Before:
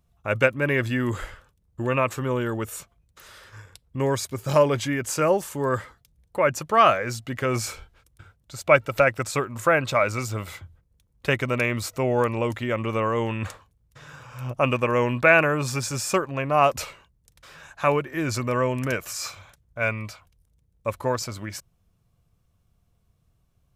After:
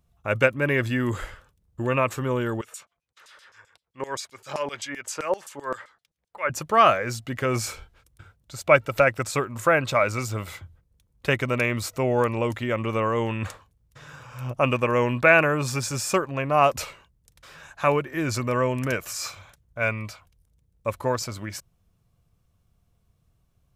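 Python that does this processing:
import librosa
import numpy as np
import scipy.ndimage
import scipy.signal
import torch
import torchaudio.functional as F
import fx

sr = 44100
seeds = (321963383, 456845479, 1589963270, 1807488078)

y = fx.filter_lfo_bandpass(x, sr, shape='saw_down', hz=7.7, low_hz=630.0, high_hz=8000.0, q=0.91, at=(2.61, 6.5))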